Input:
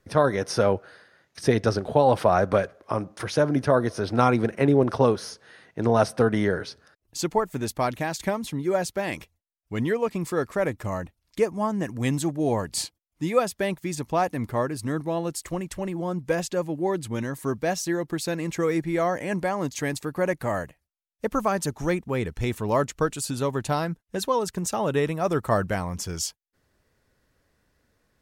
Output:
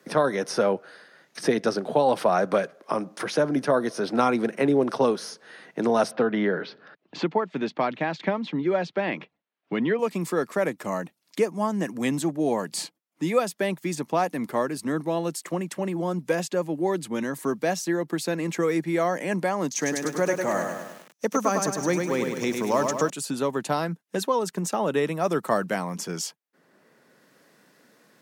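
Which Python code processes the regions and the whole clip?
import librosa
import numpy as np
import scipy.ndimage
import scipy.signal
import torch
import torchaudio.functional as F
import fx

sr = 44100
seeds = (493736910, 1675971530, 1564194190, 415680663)

y = fx.chain(x, sr, fx.lowpass(hz=3700.0, slope=24),
    fx.band_squash(depth_pct=40), at=(6.11, 9.99))
y = fx.chain(y, sr, fx.peak_eq(hz=6000.0, db=13.5, octaves=0.34),
    fx.echo_crushed(ms=102, feedback_pct=55, bits=8, wet_db=-5.0), at=(19.7, 23.1))
y = scipy.signal.sosfilt(scipy.signal.butter(6, 160.0, 'highpass', fs=sr, output='sos'), y)
y = fx.band_squash(y, sr, depth_pct=40)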